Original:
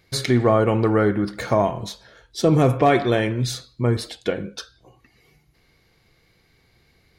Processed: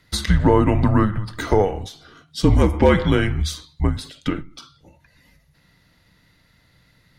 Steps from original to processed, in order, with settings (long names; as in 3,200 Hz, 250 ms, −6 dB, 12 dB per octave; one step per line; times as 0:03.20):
frequency shifter −200 Hz
every ending faded ahead of time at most 130 dB per second
level +2.5 dB